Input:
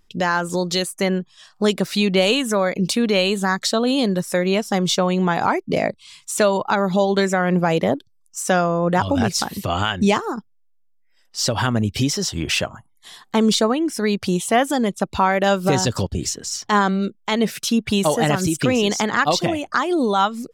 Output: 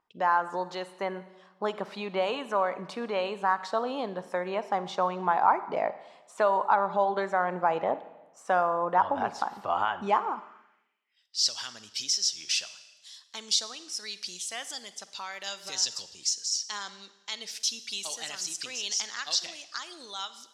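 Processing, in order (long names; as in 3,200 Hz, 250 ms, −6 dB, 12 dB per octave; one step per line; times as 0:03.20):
four-comb reverb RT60 1.1 s, DRR 13.5 dB
band-pass filter sweep 940 Hz → 5,300 Hz, 0:10.32–0:11.52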